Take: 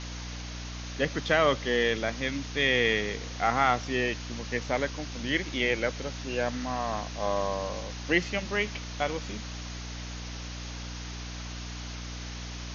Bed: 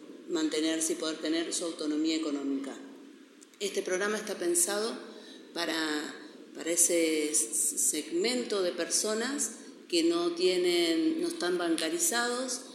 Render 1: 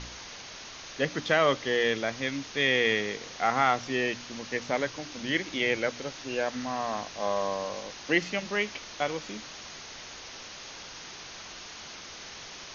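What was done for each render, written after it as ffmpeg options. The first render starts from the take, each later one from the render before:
-af "bandreject=f=60:t=h:w=4,bandreject=f=120:t=h:w=4,bandreject=f=180:t=h:w=4,bandreject=f=240:t=h:w=4,bandreject=f=300:t=h:w=4"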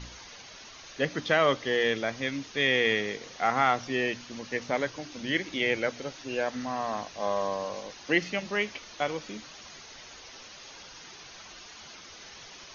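-af "afftdn=nr=7:nf=-44"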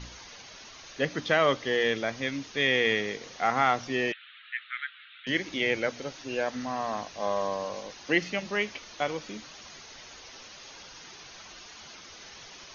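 -filter_complex "[0:a]asettb=1/sr,asplit=3[a][b][c];[a]atrim=end=4.124[d];[b]atrim=start=4.12:end=5.27,asetpts=PTS-STARTPTS,afade=t=in:d=0.004:c=qsin,afade=t=out:st=1.146:d=0.004:c=qsin,asuperpass=centerf=2200:order=20:qfactor=0.85[e];[c]atrim=start=5.266[f];[d][e]acrossfade=d=0.004:c1=hsin:c2=qsin[g];[g][f]acrossfade=d=0.004:c1=qsin:c2=hsin"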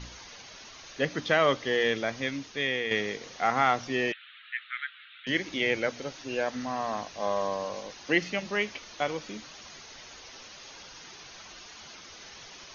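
-filter_complex "[0:a]asplit=2[a][b];[a]atrim=end=2.91,asetpts=PTS-STARTPTS,afade=t=out:st=2.24:d=0.67:silence=0.398107[c];[b]atrim=start=2.91,asetpts=PTS-STARTPTS,afade=t=in:d=0.004:c=hsin:silence=0.398107[d];[c][d]concat=n=2:v=0:a=1"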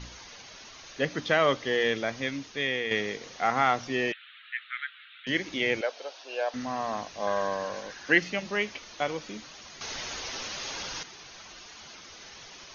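-filter_complex "[0:a]asettb=1/sr,asplit=3[a][b][c];[a]atrim=end=5.814[d];[b]atrim=start=5.81:end=6.54,asetpts=PTS-STARTPTS,afade=t=in:d=0.004:c=qsin,afade=t=out:st=0.726:d=0.004:c=qsin,highpass=f=480:w=0.5412,highpass=f=480:w=1.3066,equalizer=f=680:t=q:w=4:g=4,equalizer=f=1.3k:t=q:w=4:g=-3,equalizer=f=2k:t=q:w=4:g=-8,lowpass=f=5.5k:w=0.5412,lowpass=f=5.5k:w=1.3066[e];[c]atrim=start=6.536[f];[d][e]acrossfade=d=0.004:c1=hsin:c2=qsin[g];[g][f]acrossfade=d=0.004:c1=qsin:c2=hsin,asettb=1/sr,asplit=3[h][i][j];[h]atrim=end=7.274[k];[i]atrim=start=7.27:end=8.2,asetpts=PTS-STARTPTS,afade=t=in:d=0.004:c=qsin,afade=t=out:st=0.926:d=0.004:c=qsin,equalizer=f=1.6k:t=o:w=0.35:g=13[l];[j]atrim=start=8.196[m];[k][l]acrossfade=d=0.004:c1=hsin:c2=qsin[n];[n][m]acrossfade=d=0.004:c1=qsin:c2=hsin,asplit=3[o][p][q];[o]atrim=end=9.812[r];[p]atrim=start=9.808:end=11.032,asetpts=PTS-STARTPTS,volume=10.5dB[s];[q]atrim=start=11.028[t];[r][s]acrossfade=d=0.004:c1=hsin:c2=hsin[u];[u][t]acrossfade=d=0.004:c1=hsin:c2=hsin"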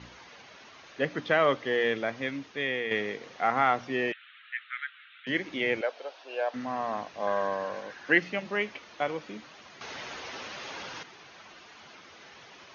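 -af "highpass=97,bass=f=250:g=-2,treble=f=4k:g=-14"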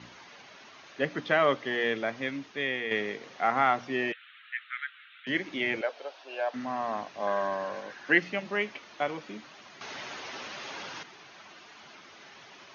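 -af "highpass=110,bandreject=f=490:w=12"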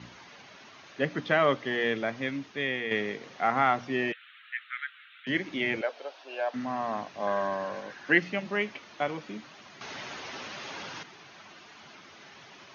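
-af "bass=f=250:g=5,treble=f=4k:g=0"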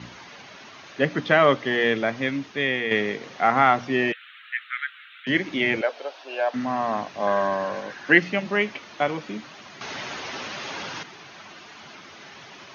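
-af "volume=6.5dB"

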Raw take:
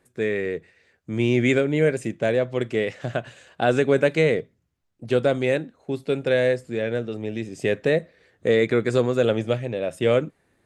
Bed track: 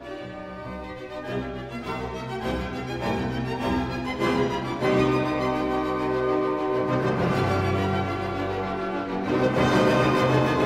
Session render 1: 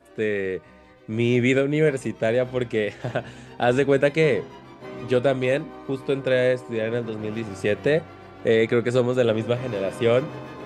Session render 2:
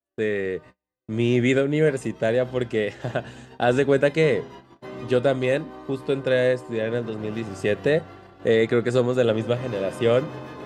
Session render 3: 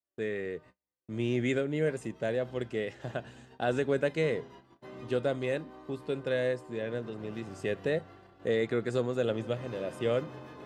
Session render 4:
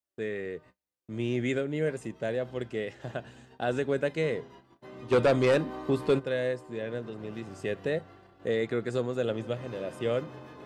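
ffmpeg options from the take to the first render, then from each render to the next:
-filter_complex "[1:a]volume=-15.5dB[a];[0:a][a]amix=inputs=2:normalize=0"
-af "agate=range=-39dB:threshold=-42dB:ratio=16:detection=peak,bandreject=f=2.3k:w=11"
-af "volume=-9.5dB"
-filter_complex "[0:a]asplit=3[a][b][c];[a]afade=t=out:st=5.11:d=0.02[d];[b]aeval=exprs='0.141*sin(PI/2*2.24*val(0)/0.141)':c=same,afade=t=in:st=5.11:d=0.02,afade=t=out:st=6.18:d=0.02[e];[c]afade=t=in:st=6.18:d=0.02[f];[d][e][f]amix=inputs=3:normalize=0"

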